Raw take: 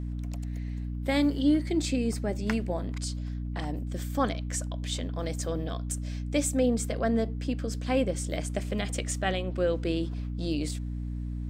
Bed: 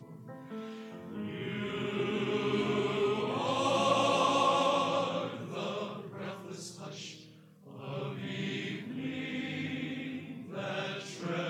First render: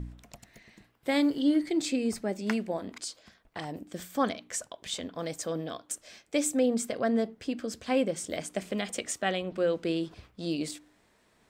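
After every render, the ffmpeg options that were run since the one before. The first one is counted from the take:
-af "bandreject=f=60:t=h:w=4,bandreject=f=120:t=h:w=4,bandreject=f=180:t=h:w=4,bandreject=f=240:t=h:w=4,bandreject=f=300:t=h:w=4"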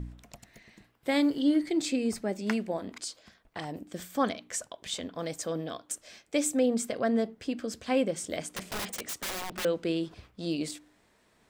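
-filter_complex "[0:a]asettb=1/sr,asplit=3[a][b][c];[a]atrim=end=8.504[d];[b]atrim=start=8.5:end=9.65,asetpts=PTS-STARTPTS,afade=t=in:d=0.004:c=qsin,afade=t=out:st=1.146:d=0.004:c=qsin,aeval=exprs='(mod(29.9*val(0)+1,2)-1)/29.9':c=same[e];[c]atrim=start=9.646[f];[d][e]acrossfade=d=0.004:c1=hsin:c2=qsin[g];[g][f]acrossfade=d=0.004:c1=qsin:c2=hsin"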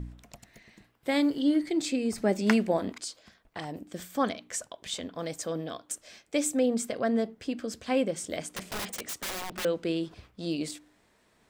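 -filter_complex "[0:a]asettb=1/sr,asplit=3[a][b][c];[a]atrim=end=2.184[d];[b]atrim=start=2.18:end=2.93,asetpts=PTS-STARTPTS,afade=t=in:d=0.004:c=qsin,afade=t=out:st=0.746:d=0.004:c=qsin,acontrast=57[e];[c]atrim=start=2.926[f];[d][e]acrossfade=d=0.004:c1=hsin:c2=qsin[g];[g][f]acrossfade=d=0.004:c1=qsin:c2=hsin"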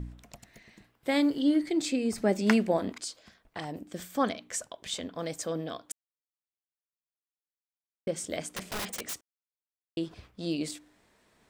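-filter_complex "[0:a]asplit=5[a][b][c][d][e];[a]atrim=end=5.92,asetpts=PTS-STARTPTS,afade=t=out:st=5.916:d=0.004:c=hsin[f];[b]atrim=start=5.92:end=8.07,asetpts=PTS-STARTPTS,volume=0[g];[c]atrim=start=8.07:end=9.21,asetpts=PTS-STARTPTS,afade=t=in:d=0.004:c=hsin,afade=t=out:st=1.136:d=0.004:c=hsin[h];[d]atrim=start=9.21:end=9.97,asetpts=PTS-STARTPTS,volume=0[i];[e]atrim=start=9.97,asetpts=PTS-STARTPTS,afade=t=in:d=0.004:c=hsin[j];[f][g][h][i][j]concat=n=5:v=0:a=1"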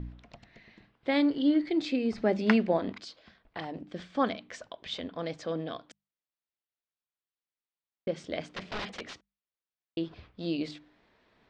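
-af "lowpass=f=4.4k:w=0.5412,lowpass=f=4.4k:w=1.3066,bandreject=f=50:t=h:w=6,bandreject=f=100:t=h:w=6,bandreject=f=150:t=h:w=6,bandreject=f=200:t=h:w=6"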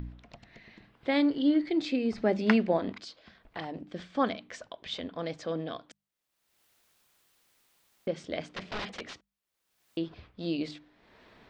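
-af "acompressor=mode=upward:threshold=-47dB:ratio=2.5"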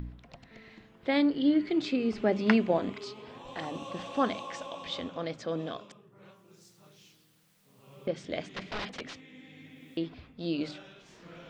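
-filter_complex "[1:a]volume=-14.5dB[a];[0:a][a]amix=inputs=2:normalize=0"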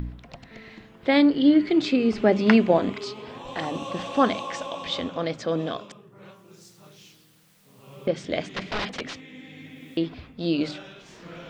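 -af "volume=7.5dB,alimiter=limit=-3dB:level=0:latency=1"

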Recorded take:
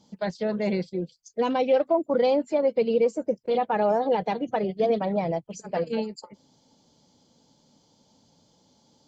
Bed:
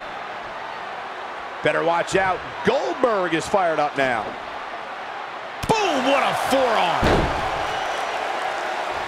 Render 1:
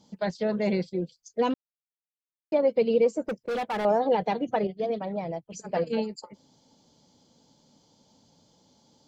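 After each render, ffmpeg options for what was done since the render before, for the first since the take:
-filter_complex "[0:a]asettb=1/sr,asplit=3[a][b][c];[a]atrim=end=3.264[d];[b]atrim=start=3.26:end=3.85,asetpts=PTS-STARTPTS,afade=t=in:d=0.004:c=qsin,afade=t=out:st=0.586:d=0.004:c=qsin,asoftclip=type=hard:threshold=-26.5dB[e];[c]atrim=start=3.846[f];[d][e]acrossfade=d=0.004:c1=hsin:c2=qsin[g];[g][f]acrossfade=d=0.004:c1=qsin:c2=hsin,asplit=5[h][i][j][k][l];[h]atrim=end=1.54,asetpts=PTS-STARTPTS,afade=t=out:st=1.536:d=0.004:c=hsin[m];[i]atrim=start=1.54:end=2.52,asetpts=PTS-STARTPTS,volume=0[n];[j]atrim=start=2.52:end=4.672,asetpts=PTS-STARTPTS,afade=t=in:d=0.004:c=hsin[o];[k]atrim=start=4.668:end=5.522,asetpts=PTS-STARTPTS,volume=-6dB[p];[l]atrim=start=5.518[q];[m][n][o]concat=n=3:v=0:a=1[r];[r][p]acrossfade=d=0.004:c1=hsin:c2=hsin[s];[s][q]acrossfade=d=0.004:c1=hsin:c2=hsin"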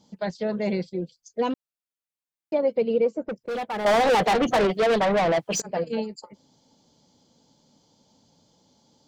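-filter_complex "[0:a]asettb=1/sr,asplit=3[a][b][c];[a]atrim=end=2.774[d];[b]atrim=start=2.77:end=3.36,asetpts=PTS-STARTPTS,afade=t=in:d=0.004:c=qsin,afade=t=out:st=0.586:d=0.004:c=qsin,adynamicsmooth=sensitivity=1:basefreq=3.8k[e];[c]atrim=start=3.356[f];[d][e]acrossfade=d=0.004:c1=hsin:c2=qsin[g];[g][f]acrossfade=d=0.004:c1=qsin:c2=hsin,asettb=1/sr,asplit=3[h][i][j];[h]atrim=end=3.864[k];[i]atrim=start=3.86:end=5.62,asetpts=PTS-STARTPTS,afade=t=in:d=0.004:c=qsin,afade=t=out:st=1.756:d=0.004:c=qsin,asplit=2[l][m];[m]highpass=f=720:p=1,volume=31dB,asoftclip=type=tanh:threshold=-13.5dB[n];[l][n]amix=inputs=2:normalize=0,lowpass=f=4.5k:p=1,volume=-6dB[o];[j]atrim=start=5.616[p];[k][o]acrossfade=d=0.004:c1=hsin:c2=qsin[q];[q][p]acrossfade=d=0.004:c1=qsin:c2=hsin"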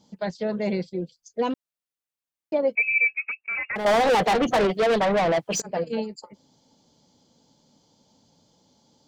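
-filter_complex "[0:a]asettb=1/sr,asplit=3[a][b][c];[a]atrim=end=2.754[d];[b]atrim=start=2.75:end=3.76,asetpts=PTS-STARTPTS,afade=t=in:d=0.004:c=qsin,afade=t=out:st=1.006:d=0.004:c=qsin,lowpass=f=2.4k:t=q:w=0.5098,lowpass=f=2.4k:t=q:w=0.6013,lowpass=f=2.4k:t=q:w=0.9,lowpass=f=2.4k:t=q:w=2.563,afreqshift=-2800[e];[c]atrim=start=3.756[f];[d][e]acrossfade=d=0.004:c1=hsin:c2=qsin[g];[g][f]acrossfade=d=0.004:c1=qsin:c2=hsin"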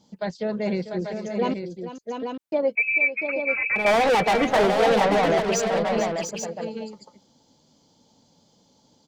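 -af "aecho=1:1:444|693|838:0.237|0.447|0.473"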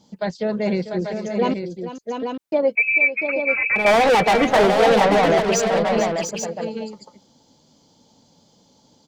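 -af "volume=4dB"

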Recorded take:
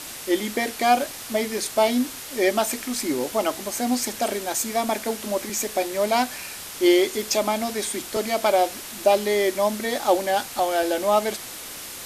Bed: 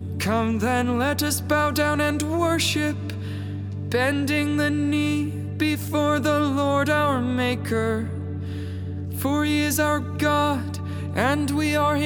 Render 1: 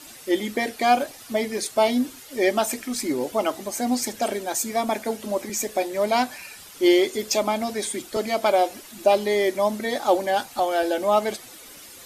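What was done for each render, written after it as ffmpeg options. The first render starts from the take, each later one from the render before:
-af "afftdn=nr=11:nf=-37"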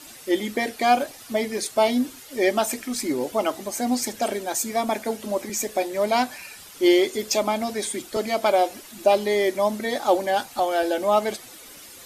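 -af anull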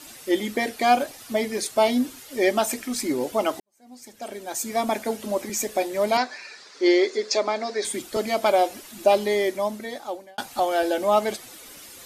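-filter_complex "[0:a]asettb=1/sr,asplit=3[a][b][c];[a]atrim=end=6.174[d];[b]atrim=start=6.17:end=7.85,asetpts=PTS-STARTPTS,afade=t=in:d=0.004:c=qsin,afade=t=out:st=1.676:d=0.004:c=qsin,highpass=360,equalizer=f=420:t=q:w=4:g=5,equalizer=f=820:t=q:w=4:g=-3,equalizer=f=1.8k:t=q:w=4:g=4,equalizer=f=3k:t=q:w=4:g=-9,equalizer=f=4.4k:t=q:w=4:g=5,lowpass=f=6.1k:w=0.5412,lowpass=f=6.1k:w=1.3066[e];[c]atrim=start=7.846[f];[d][e]acrossfade=d=0.004:c1=hsin:c2=qsin[g];[g][f]acrossfade=d=0.004:c1=qsin:c2=hsin,asplit=3[h][i][j];[h]atrim=end=3.6,asetpts=PTS-STARTPTS,afade=t=out:st=3.596:d=0.004:c=hsin[k];[i]atrim=start=3.6:end=10.38,asetpts=PTS-STARTPTS,afade=t=in:d=1.2:c=qua,afade=t=out:st=5.64:d=1.14[l];[j]atrim=start=10.38,asetpts=PTS-STARTPTS,afade=t=in:d=0.004:c=hsin[m];[k][l][m]concat=n=3:v=0:a=1"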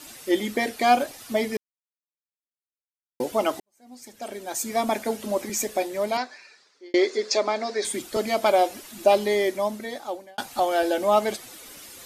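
-filter_complex "[0:a]asplit=4[a][b][c][d];[a]atrim=end=1.57,asetpts=PTS-STARTPTS,afade=t=out:st=1.566:d=0.004:c=hsin[e];[b]atrim=start=1.57:end=3.2,asetpts=PTS-STARTPTS,volume=0[f];[c]atrim=start=3.2:end=6.94,asetpts=PTS-STARTPTS,afade=t=in:d=0.004:c=hsin,afade=t=out:st=2.41:d=1.33[g];[d]atrim=start=6.94,asetpts=PTS-STARTPTS,afade=t=in:d=0.004:c=hsin[h];[e][f][g][h]concat=n=4:v=0:a=1"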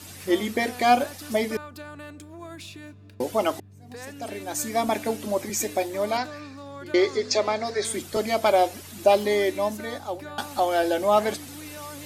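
-filter_complex "[1:a]volume=-19dB[a];[0:a][a]amix=inputs=2:normalize=0"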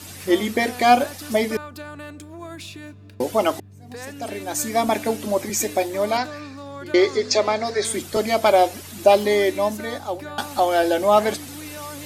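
-af "volume=4dB"

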